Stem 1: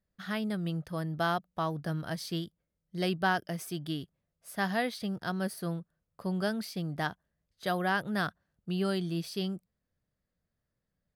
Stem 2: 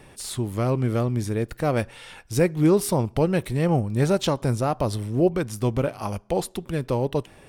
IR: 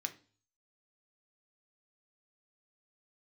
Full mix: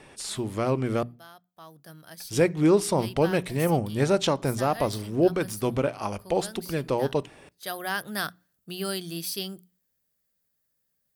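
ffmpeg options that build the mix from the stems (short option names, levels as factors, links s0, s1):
-filter_complex "[0:a]aemphasis=mode=production:type=75fm,afade=t=in:st=1.46:d=0.49:silence=0.316228,afade=t=in:st=7.32:d=0.8:silence=0.298538,asplit=2[s0][s1];[s1]volume=0.168[s2];[1:a]lowpass=9000,volume=0.944,asplit=3[s3][s4][s5];[s3]atrim=end=1.03,asetpts=PTS-STARTPTS,afade=t=out:st=1.026:d=0.004:c=hsin[s6];[s4]atrim=start=1.03:end=2.2,asetpts=PTS-STARTPTS,volume=0[s7];[s5]atrim=start=2.2,asetpts=PTS-STARTPTS,afade=t=in:d=0.004:c=hsin[s8];[s6][s7][s8]concat=n=3:v=0:a=1,asplit=2[s9][s10];[s10]volume=0.188[s11];[2:a]atrim=start_sample=2205[s12];[s2][s11]amix=inputs=2:normalize=0[s13];[s13][s12]afir=irnorm=-1:irlink=0[s14];[s0][s9][s14]amix=inputs=3:normalize=0,lowshelf=f=120:g=-9,bandreject=f=60:t=h:w=6,bandreject=f=120:t=h:w=6,bandreject=f=180:t=h:w=6,bandreject=f=240:t=h:w=6"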